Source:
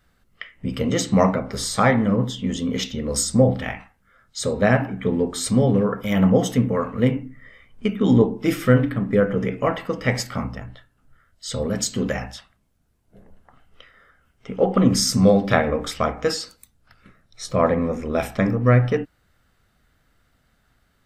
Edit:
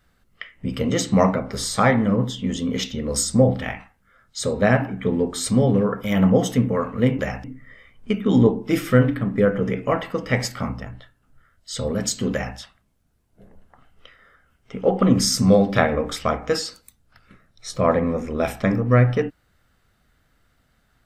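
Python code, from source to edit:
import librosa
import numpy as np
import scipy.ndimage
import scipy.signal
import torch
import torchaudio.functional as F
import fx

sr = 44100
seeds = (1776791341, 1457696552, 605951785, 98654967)

y = fx.edit(x, sr, fx.duplicate(start_s=12.07, length_s=0.25, to_s=7.19), tone=tone)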